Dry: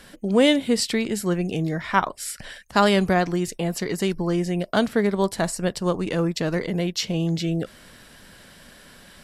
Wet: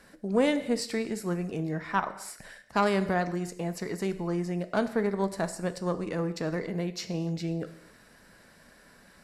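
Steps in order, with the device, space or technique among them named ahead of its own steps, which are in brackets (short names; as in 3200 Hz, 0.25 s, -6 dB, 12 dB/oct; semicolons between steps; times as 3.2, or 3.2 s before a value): bell 3200 Hz -11 dB 0.43 oct; non-linear reverb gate 0.32 s falling, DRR 10 dB; tube preamp driven hard (tube stage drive 5 dB, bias 0.45; low shelf 170 Hz -5 dB; high shelf 5500 Hz -6 dB); gain -4.5 dB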